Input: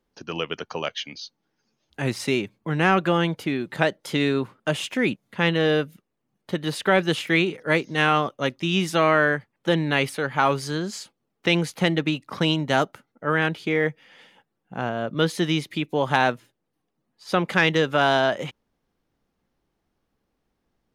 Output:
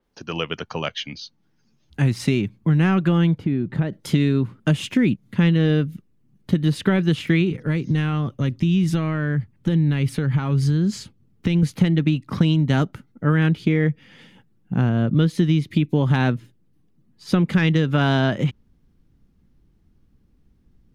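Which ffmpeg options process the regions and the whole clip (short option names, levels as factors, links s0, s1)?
-filter_complex "[0:a]asettb=1/sr,asplit=3[s0][s1][s2];[s0]atrim=end=3.384[s3];[s1]atrim=start=3.38:end=3.93,asetpts=PTS-STARTPTS,afade=t=in:d=0.004:c=qsin,afade=t=out:st=0.546:d=0.004:c=qsin,lowpass=f=1100:p=1,acompressor=threshold=0.0251:ratio=2:attack=3.2:release=140:knee=1:detection=peak[s4];[s2]atrim=start=3.926[s5];[s3][s4]acrossfade=d=0.004:c1=hsin:c2=qsin[s6];[s6][s5]acrossfade=d=0.004:c1=qsin:c2=hsin,asettb=1/sr,asplit=3[s7][s8][s9];[s7]atrim=end=7.514[s10];[s8]atrim=start=7.51:end=11.63,asetpts=PTS-STARTPTS,afade=t=in:d=0.004:c=qsin,afade=t=out:st=4.116:d=0.004:c=qsin,equalizer=f=88:t=o:w=1.4:g=8.5,acompressor=threshold=0.0316:ratio=3:attack=3.2:release=140:knee=1:detection=peak[s11];[s9]atrim=start=11.626[s12];[s10][s11]acrossfade=d=0.004:c1=hsin:c2=qsin[s13];[s13][s12]acrossfade=d=0.004:c1=qsin:c2=hsin,asubboost=boost=9:cutoff=220,acompressor=threshold=0.141:ratio=6,adynamicequalizer=threshold=0.00447:dfrequency=5300:dqfactor=0.7:tfrequency=5300:tqfactor=0.7:attack=5:release=100:ratio=0.375:range=3:mode=cutabove:tftype=highshelf,volume=1.33"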